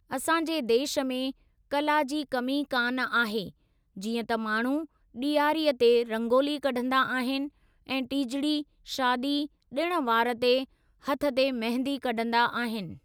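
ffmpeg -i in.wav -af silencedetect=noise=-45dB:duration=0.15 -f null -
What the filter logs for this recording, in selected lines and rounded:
silence_start: 1.31
silence_end: 1.71 | silence_duration: 0.40
silence_start: 3.50
silence_end: 3.97 | silence_duration: 0.46
silence_start: 4.85
silence_end: 5.15 | silence_duration: 0.29
silence_start: 7.49
silence_end: 7.87 | silence_duration: 0.38
silence_start: 8.63
silence_end: 8.86 | silence_duration: 0.23
silence_start: 9.46
silence_end: 9.72 | silence_duration: 0.25
silence_start: 10.65
silence_end: 11.03 | silence_duration: 0.39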